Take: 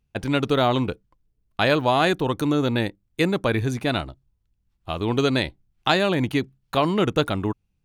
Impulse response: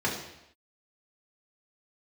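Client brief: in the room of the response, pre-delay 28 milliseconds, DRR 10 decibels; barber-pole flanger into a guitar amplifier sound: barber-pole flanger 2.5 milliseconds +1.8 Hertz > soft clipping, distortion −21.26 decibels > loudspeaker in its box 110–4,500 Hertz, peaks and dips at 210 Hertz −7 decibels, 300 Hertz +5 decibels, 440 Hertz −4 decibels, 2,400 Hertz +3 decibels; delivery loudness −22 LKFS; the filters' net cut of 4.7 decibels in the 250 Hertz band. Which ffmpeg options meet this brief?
-filter_complex "[0:a]equalizer=frequency=250:width_type=o:gain=-7.5,asplit=2[link_01][link_02];[1:a]atrim=start_sample=2205,adelay=28[link_03];[link_02][link_03]afir=irnorm=-1:irlink=0,volume=-20.5dB[link_04];[link_01][link_04]amix=inputs=2:normalize=0,asplit=2[link_05][link_06];[link_06]adelay=2.5,afreqshift=1.8[link_07];[link_05][link_07]amix=inputs=2:normalize=1,asoftclip=threshold=-15dB,highpass=110,equalizer=frequency=210:width_type=q:width=4:gain=-7,equalizer=frequency=300:width_type=q:width=4:gain=5,equalizer=frequency=440:width_type=q:width=4:gain=-4,equalizer=frequency=2400:width_type=q:width=4:gain=3,lowpass=frequency=4500:width=0.5412,lowpass=frequency=4500:width=1.3066,volume=6.5dB"

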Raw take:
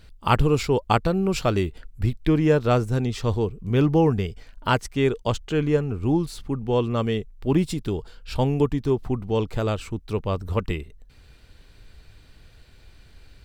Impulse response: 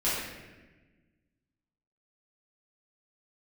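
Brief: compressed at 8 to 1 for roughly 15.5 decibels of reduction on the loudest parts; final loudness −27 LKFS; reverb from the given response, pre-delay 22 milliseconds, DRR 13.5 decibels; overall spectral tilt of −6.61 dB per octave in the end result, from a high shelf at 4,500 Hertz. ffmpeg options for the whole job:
-filter_complex "[0:a]highshelf=frequency=4500:gain=-5,acompressor=threshold=-31dB:ratio=8,asplit=2[link_01][link_02];[1:a]atrim=start_sample=2205,adelay=22[link_03];[link_02][link_03]afir=irnorm=-1:irlink=0,volume=-24dB[link_04];[link_01][link_04]amix=inputs=2:normalize=0,volume=9dB"

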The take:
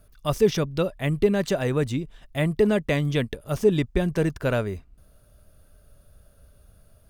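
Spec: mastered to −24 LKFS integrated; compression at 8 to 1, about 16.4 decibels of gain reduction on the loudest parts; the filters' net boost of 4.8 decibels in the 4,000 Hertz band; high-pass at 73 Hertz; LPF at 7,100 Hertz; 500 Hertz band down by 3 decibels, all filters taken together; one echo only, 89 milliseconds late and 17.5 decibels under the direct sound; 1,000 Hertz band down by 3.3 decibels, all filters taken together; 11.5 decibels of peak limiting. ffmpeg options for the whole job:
ffmpeg -i in.wav -af "highpass=73,lowpass=7100,equalizer=frequency=500:width_type=o:gain=-3,equalizer=frequency=1000:width_type=o:gain=-4,equalizer=frequency=4000:width_type=o:gain=6.5,acompressor=threshold=-34dB:ratio=8,alimiter=level_in=10dB:limit=-24dB:level=0:latency=1,volume=-10dB,aecho=1:1:89:0.133,volume=19.5dB" out.wav

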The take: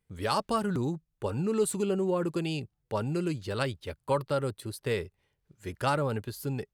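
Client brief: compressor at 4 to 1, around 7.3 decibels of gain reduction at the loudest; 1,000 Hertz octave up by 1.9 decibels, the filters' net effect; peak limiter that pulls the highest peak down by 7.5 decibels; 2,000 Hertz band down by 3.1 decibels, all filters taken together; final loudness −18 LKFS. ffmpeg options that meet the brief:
ffmpeg -i in.wav -af "equalizer=frequency=1000:width_type=o:gain=4,equalizer=frequency=2000:width_type=o:gain=-6.5,acompressor=threshold=-30dB:ratio=4,volume=19dB,alimiter=limit=-8dB:level=0:latency=1" out.wav

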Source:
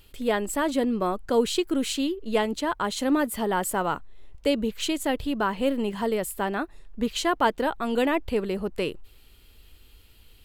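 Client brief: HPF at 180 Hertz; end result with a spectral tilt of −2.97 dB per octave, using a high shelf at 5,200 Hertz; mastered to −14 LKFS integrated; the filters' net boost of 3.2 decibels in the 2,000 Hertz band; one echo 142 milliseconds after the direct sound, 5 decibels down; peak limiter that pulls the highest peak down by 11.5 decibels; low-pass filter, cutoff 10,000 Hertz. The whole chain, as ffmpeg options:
ffmpeg -i in.wav -af "highpass=180,lowpass=10000,equalizer=frequency=2000:width_type=o:gain=3.5,highshelf=frequency=5200:gain=5,alimiter=limit=-19.5dB:level=0:latency=1,aecho=1:1:142:0.562,volume=14.5dB" out.wav

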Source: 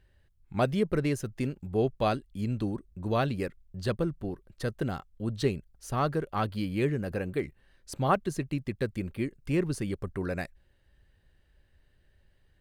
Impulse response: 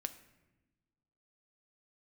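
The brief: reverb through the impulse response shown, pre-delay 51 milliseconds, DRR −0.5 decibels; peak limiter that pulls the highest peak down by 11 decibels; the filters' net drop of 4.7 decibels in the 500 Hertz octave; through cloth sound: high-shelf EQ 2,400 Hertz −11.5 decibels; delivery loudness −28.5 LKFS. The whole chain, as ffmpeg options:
-filter_complex "[0:a]equalizer=frequency=500:width_type=o:gain=-5.5,alimiter=level_in=1dB:limit=-24dB:level=0:latency=1,volume=-1dB,asplit=2[link_01][link_02];[1:a]atrim=start_sample=2205,adelay=51[link_03];[link_02][link_03]afir=irnorm=-1:irlink=0,volume=2dB[link_04];[link_01][link_04]amix=inputs=2:normalize=0,highshelf=frequency=2400:gain=-11.5,volume=5.5dB"

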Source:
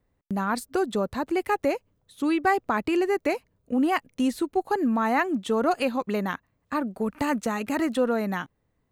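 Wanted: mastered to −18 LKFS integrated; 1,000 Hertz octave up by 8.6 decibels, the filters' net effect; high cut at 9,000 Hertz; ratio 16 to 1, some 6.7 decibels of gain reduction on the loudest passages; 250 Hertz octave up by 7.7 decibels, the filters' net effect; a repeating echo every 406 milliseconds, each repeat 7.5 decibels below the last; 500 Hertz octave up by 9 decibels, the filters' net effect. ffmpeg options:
ffmpeg -i in.wav -af "lowpass=9000,equalizer=frequency=250:width_type=o:gain=6.5,equalizer=frequency=500:width_type=o:gain=7.5,equalizer=frequency=1000:width_type=o:gain=8,acompressor=threshold=-16dB:ratio=16,aecho=1:1:406|812|1218|1624|2030:0.422|0.177|0.0744|0.0312|0.0131,volume=4dB" out.wav

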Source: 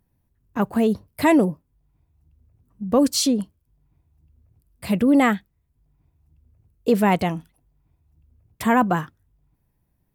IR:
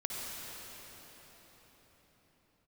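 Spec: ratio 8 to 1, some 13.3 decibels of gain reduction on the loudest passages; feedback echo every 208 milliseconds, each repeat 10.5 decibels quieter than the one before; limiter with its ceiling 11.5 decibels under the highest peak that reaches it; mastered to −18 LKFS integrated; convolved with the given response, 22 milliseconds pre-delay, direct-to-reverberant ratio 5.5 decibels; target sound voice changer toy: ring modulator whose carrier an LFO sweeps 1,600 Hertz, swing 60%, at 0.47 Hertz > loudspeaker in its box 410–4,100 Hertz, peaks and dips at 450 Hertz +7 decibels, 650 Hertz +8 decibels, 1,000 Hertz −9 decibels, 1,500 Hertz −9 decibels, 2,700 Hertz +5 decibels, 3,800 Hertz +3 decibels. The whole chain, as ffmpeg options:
-filter_complex "[0:a]acompressor=threshold=-27dB:ratio=8,alimiter=level_in=4.5dB:limit=-24dB:level=0:latency=1,volume=-4.5dB,aecho=1:1:208|416|624:0.299|0.0896|0.0269,asplit=2[link_01][link_02];[1:a]atrim=start_sample=2205,adelay=22[link_03];[link_02][link_03]afir=irnorm=-1:irlink=0,volume=-9dB[link_04];[link_01][link_04]amix=inputs=2:normalize=0,aeval=exprs='val(0)*sin(2*PI*1600*n/s+1600*0.6/0.47*sin(2*PI*0.47*n/s))':channel_layout=same,highpass=410,equalizer=frequency=450:width_type=q:width=4:gain=7,equalizer=frequency=650:width_type=q:width=4:gain=8,equalizer=frequency=1000:width_type=q:width=4:gain=-9,equalizer=frequency=1500:width_type=q:width=4:gain=-9,equalizer=frequency=2700:width_type=q:width=4:gain=5,equalizer=frequency=3800:width_type=q:width=4:gain=3,lowpass=frequency=4100:width=0.5412,lowpass=frequency=4100:width=1.3066,volume=23dB"

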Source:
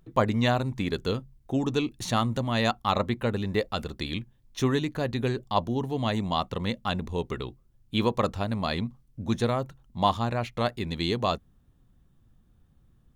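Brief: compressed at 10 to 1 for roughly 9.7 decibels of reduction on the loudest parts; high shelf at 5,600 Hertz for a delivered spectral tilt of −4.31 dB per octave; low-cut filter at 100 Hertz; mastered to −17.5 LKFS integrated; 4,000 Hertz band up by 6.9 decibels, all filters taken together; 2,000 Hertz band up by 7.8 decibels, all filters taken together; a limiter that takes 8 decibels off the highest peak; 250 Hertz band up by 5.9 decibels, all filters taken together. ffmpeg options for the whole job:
ffmpeg -i in.wav -af "highpass=100,equalizer=frequency=250:width_type=o:gain=7,equalizer=frequency=2000:width_type=o:gain=8,equalizer=frequency=4000:width_type=o:gain=3.5,highshelf=frequency=5600:gain=6,acompressor=threshold=-25dB:ratio=10,volume=15.5dB,alimiter=limit=-4dB:level=0:latency=1" out.wav

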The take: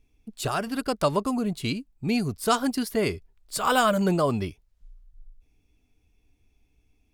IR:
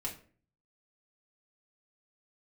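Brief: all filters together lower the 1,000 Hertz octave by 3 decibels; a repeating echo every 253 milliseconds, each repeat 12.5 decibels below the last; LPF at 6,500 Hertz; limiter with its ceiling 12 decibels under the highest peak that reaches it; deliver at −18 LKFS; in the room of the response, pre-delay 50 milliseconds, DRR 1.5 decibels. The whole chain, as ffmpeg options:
-filter_complex "[0:a]lowpass=6500,equalizer=frequency=1000:width_type=o:gain=-4,alimiter=limit=-22dB:level=0:latency=1,aecho=1:1:253|506|759:0.237|0.0569|0.0137,asplit=2[link_01][link_02];[1:a]atrim=start_sample=2205,adelay=50[link_03];[link_02][link_03]afir=irnorm=-1:irlink=0,volume=-2dB[link_04];[link_01][link_04]amix=inputs=2:normalize=0,volume=10.5dB"

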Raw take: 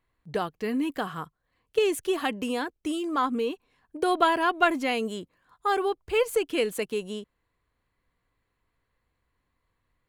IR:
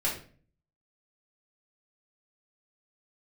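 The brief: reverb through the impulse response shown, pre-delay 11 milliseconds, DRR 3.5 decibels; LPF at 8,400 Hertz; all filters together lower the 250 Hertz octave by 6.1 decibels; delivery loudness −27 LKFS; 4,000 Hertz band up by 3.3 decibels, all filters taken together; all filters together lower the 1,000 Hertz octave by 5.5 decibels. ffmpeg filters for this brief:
-filter_complex "[0:a]lowpass=8400,equalizer=frequency=250:width_type=o:gain=-8,equalizer=frequency=1000:width_type=o:gain=-7.5,equalizer=frequency=4000:width_type=o:gain=5.5,asplit=2[link_01][link_02];[1:a]atrim=start_sample=2205,adelay=11[link_03];[link_02][link_03]afir=irnorm=-1:irlink=0,volume=-11dB[link_04];[link_01][link_04]amix=inputs=2:normalize=0,volume=2dB"

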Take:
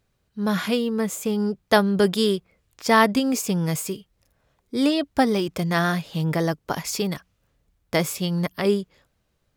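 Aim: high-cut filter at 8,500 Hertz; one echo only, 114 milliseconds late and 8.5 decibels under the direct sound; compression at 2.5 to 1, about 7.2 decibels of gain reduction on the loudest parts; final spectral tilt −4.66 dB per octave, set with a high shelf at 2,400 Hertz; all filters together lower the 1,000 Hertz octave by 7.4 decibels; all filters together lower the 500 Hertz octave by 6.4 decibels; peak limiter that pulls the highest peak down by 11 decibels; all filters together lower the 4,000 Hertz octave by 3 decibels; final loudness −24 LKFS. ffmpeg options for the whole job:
ffmpeg -i in.wav -af "lowpass=8500,equalizer=frequency=500:width_type=o:gain=-6.5,equalizer=frequency=1000:width_type=o:gain=-8,highshelf=frequency=2400:gain=5.5,equalizer=frequency=4000:width_type=o:gain=-8.5,acompressor=threshold=-28dB:ratio=2.5,alimiter=level_in=1.5dB:limit=-24dB:level=0:latency=1,volume=-1.5dB,aecho=1:1:114:0.376,volume=10dB" out.wav

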